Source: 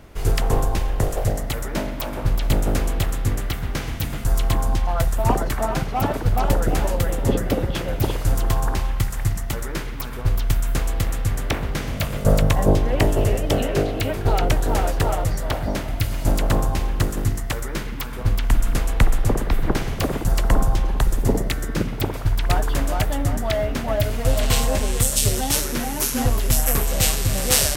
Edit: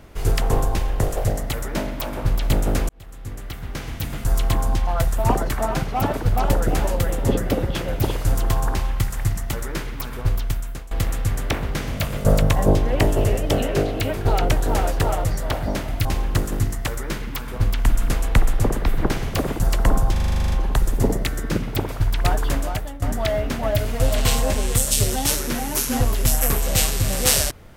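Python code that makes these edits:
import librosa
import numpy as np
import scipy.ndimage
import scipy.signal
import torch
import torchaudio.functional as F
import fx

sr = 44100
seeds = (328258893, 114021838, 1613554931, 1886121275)

y = fx.edit(x, sr, fx.fade_in_span(start_s=2.89, length_s=1.44),
    fx.fade_out_to(start_s=10.25, length_s=0.66, floor_db=-21.0),
    fx.cut(start_s=16.05, length_s=0.65),
    fx.stutter(start_s=20.77, slice_s=0.04, count=11),
    fx.fade_out_to(start_s=22.77, length_s=0.5, floor_db=-17.5), tone=tone)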